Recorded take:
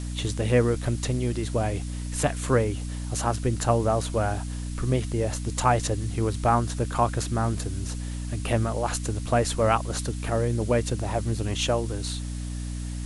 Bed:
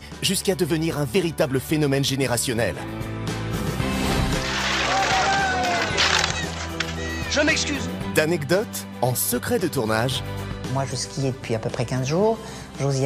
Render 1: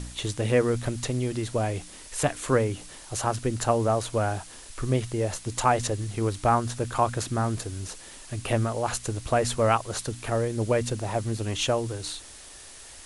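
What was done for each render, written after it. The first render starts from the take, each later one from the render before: de-hum 60 Hz, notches 5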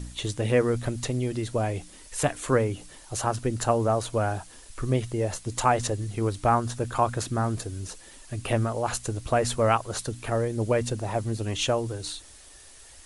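noise reduction 6 dB, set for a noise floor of -46 dBFS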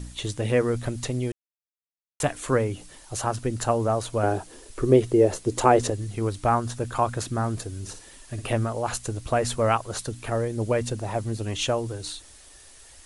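1.32–2.20 s: mute; 4.23–5.90 s: peaking EQ 390 Hz +13.5 dB 1.1 oct; 7.79–8.50 s: flutter echo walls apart 9.8 m, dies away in 0.37 s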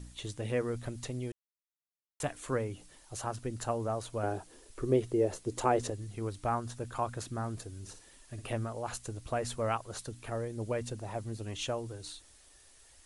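trim -10 dB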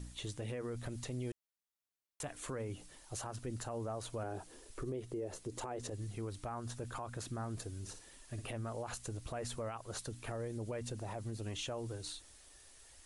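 compression 4:1, threshold -34 dBFS, peak gain reduction 11 dB; peak limiter -32.5 dBFS, peak gain reduction 10.5 dB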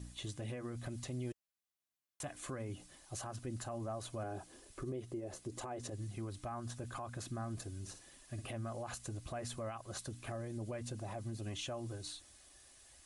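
comb of notches 460 Hz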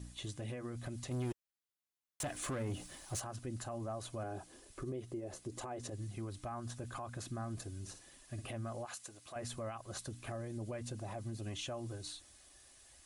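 1.11–3.20 s: waveshaping leveller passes 2; 8.85–9.36 s: high-pass 950 Hz 6 dB/octave

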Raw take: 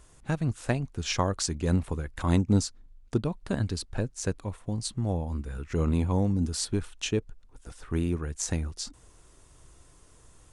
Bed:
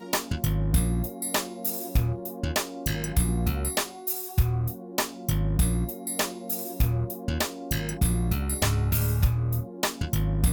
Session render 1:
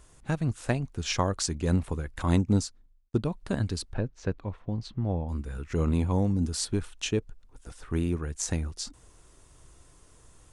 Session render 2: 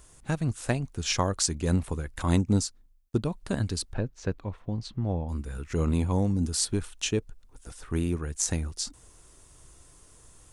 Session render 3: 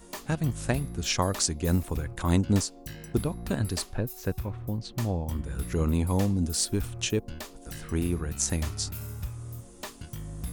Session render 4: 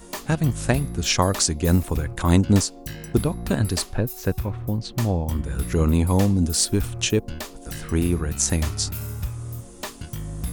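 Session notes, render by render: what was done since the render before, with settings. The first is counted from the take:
2.47–3.14 s: fade out; 3.93–5.29 s: distance through air 230 m
treble shelf 6.2 kHz +8 dB
add bed -13 dB
trim +6.5 dB; peak limiter -3 dBFS, peak gain reduction 2.5 dB

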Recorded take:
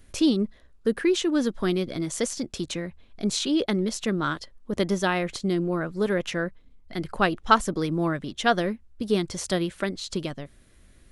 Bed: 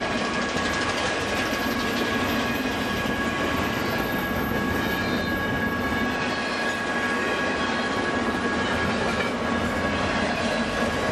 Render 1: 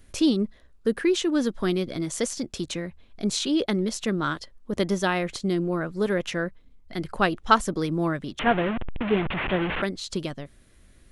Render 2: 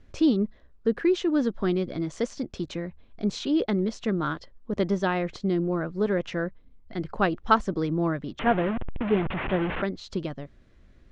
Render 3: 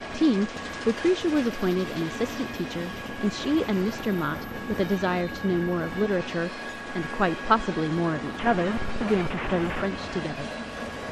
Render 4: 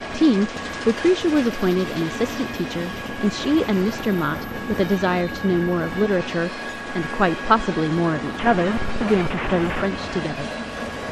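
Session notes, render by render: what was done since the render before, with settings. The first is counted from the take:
8.39–9.82 s: one-bit delta coder 16 kbps, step -21.5 dBFS
low-pass 6.4 kHz 24 dB/octave; treble shelf 2.3 kHz -10 dB
add bed -10 dB
trim +5 dB; peak limiter -2 dBFS, peak gain reduction 1 dB

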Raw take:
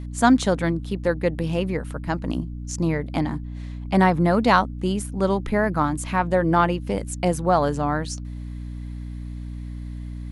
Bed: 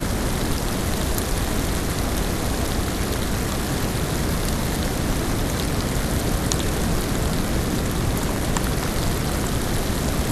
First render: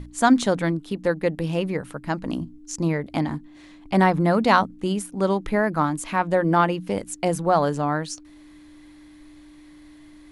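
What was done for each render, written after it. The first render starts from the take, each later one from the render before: hum notches 60/120/180/240 Hz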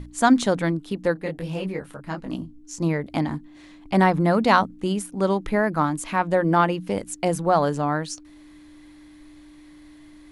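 1.15–2.80 s: detune thickener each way 45 cents -> 29 cents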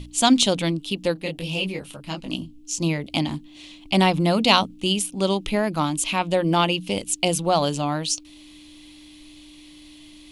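resonant high shelf 2.2 kHz +8.5 dB, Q 3; band-stop 450 Hz, Q 12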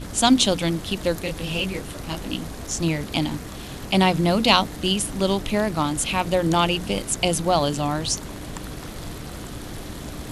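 add bed -12 dB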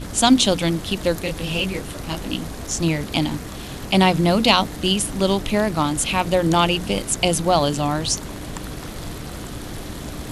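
trim +2.5 dB; peak limiter -2 dBFS, peak gain reduction 3 dB

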